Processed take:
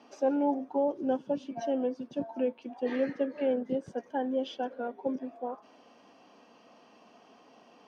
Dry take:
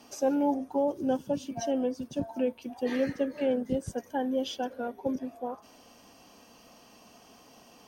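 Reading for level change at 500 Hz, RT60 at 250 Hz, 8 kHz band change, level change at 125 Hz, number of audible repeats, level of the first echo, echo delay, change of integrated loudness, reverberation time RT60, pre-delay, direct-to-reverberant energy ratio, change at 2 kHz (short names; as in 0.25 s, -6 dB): -0.5 dB, none, under -10 dB, -8.5 dB, none, none, none, -1.0 dB, none, none, none, -2.0 dB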